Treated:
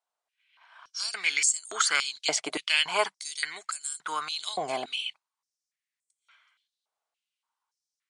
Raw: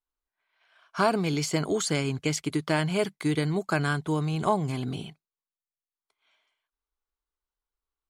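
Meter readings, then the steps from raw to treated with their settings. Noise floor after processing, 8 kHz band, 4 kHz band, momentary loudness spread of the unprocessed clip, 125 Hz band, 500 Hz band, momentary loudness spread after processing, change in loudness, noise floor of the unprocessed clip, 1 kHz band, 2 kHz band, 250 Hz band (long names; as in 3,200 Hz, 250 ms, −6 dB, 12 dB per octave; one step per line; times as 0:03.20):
below −85 dBFS, +7.5 dB, +7.5 dB, 7 LU, −30.0 dB, −7.5 dB, 10 LU, −0.5 dB, below −85 dBFS, −2.0 dB, +3.5 dB, −18.5 dB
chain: Butterworth low-pass 10,000 Hz 96 dB per octave
high-pass on a step sequencer 3.5 Hz 670–7,800 Hz
level +4 dB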